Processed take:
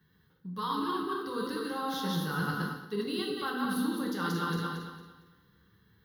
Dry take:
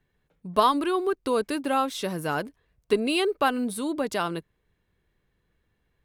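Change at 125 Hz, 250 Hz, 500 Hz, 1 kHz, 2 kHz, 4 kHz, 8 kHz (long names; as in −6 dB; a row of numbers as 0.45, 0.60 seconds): +4.0, −4.0, −11.0, −8.0, −4.0, −5.0, −7.5 decibels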